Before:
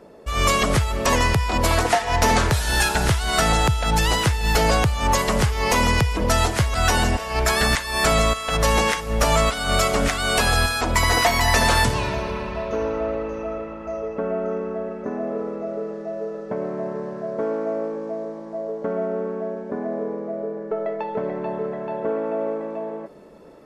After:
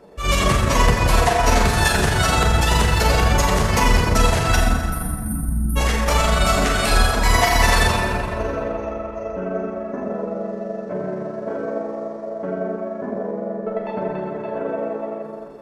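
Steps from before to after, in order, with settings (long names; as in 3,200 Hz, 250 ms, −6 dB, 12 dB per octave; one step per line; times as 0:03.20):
reverb reduction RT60 0.68 s
time-frequency box erased 0:06.90–0:08.74, 330–8,600 Hz
dense smooth reverb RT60 3.4 s, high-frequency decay 0.55×, DRR −4.5 dB
time stretch by overlap-add 0.66×, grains 85 ms
level −1 dB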